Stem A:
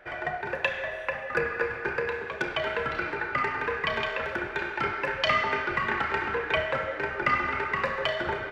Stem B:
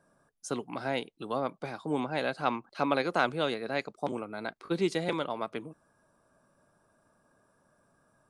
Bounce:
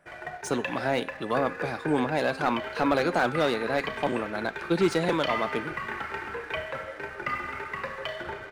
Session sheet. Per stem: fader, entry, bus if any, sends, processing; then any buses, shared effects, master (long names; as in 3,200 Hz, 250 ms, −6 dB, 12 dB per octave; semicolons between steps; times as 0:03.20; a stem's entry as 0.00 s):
−10.0 dB, 0.00 s, no send, no processing
+2.5 dB, 0.00 s, no send, hum removal 266.6 Hz, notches 29; slew-rate limiting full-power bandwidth 71 Hz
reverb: not used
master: leveller curve on the samples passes 1